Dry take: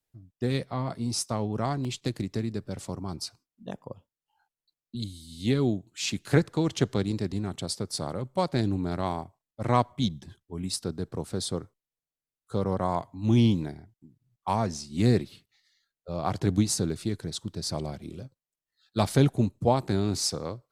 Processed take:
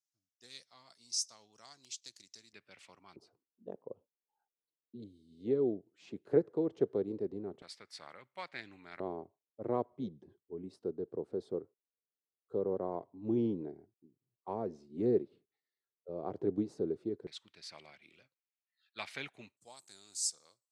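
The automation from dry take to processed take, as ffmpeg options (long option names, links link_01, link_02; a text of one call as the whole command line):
ffmpeg -i in.wav -af "asetnsamples=nb_out_samples=441:pad=0,asendcmd='2.53 bandpass f 2400;3.16 bandpass f 430;7.62 bandpass f 2100;9 bandpass f 410;17.27 bandpass f 2300;19.57 bandpass f 7800',bandpass=frequency=6000:width_type=q:width=3.1:csg=0" out.wav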